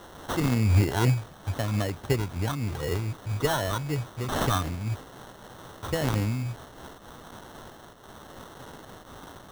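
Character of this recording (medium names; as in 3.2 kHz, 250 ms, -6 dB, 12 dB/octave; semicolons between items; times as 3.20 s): a quantiser's noise floor 8-bit, dither triangular; phasing stages 2, 3.9 Hz, lowest notch 490–1200 Hz; aliases and images of a low sample rate 2.4 kHz, jitter 0%; random flutter of the level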